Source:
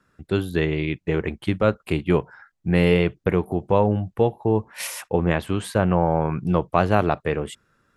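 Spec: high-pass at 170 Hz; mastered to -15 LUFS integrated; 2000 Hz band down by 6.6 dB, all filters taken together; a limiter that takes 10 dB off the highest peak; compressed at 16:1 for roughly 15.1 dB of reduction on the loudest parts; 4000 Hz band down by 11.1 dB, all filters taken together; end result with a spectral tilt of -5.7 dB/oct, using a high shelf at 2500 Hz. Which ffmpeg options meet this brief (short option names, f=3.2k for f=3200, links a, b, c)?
-af "highpass=170,equalizer=f=2k:t=o:g=-3,highshelf=f=2.5k:g=-7.5,equalizer=f=4k:t=o:g=-8,acompressor=threshold=-30dB:ratio=16,volume=24dB,alimiter=limit=-2.5dB:level=0:latency=1"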